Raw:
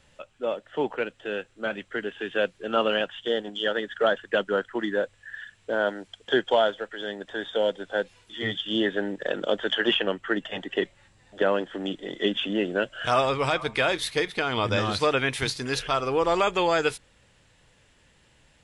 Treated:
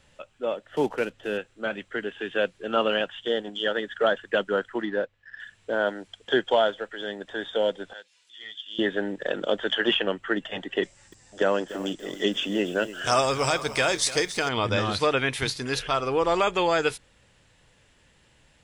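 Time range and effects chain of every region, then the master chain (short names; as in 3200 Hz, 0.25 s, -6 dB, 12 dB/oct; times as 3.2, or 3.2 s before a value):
0.7–1.39 block floating point 5-bit + LPF 8600 Hz + low shelf 320 Hz +6 dB
4.82–5.4 G.711 law mismatch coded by A + air absorption 160 m
7.93–8.79 LPF 6000 Hz + differentiator + upward compressor, threshold -56 dBFS
10.83–14.49 band shelf 6600 Hz +13 dB 1.1 oct + lo-fi delay 0.293 s, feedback 35%, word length 7-bit, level -14 dB
whole clip: dry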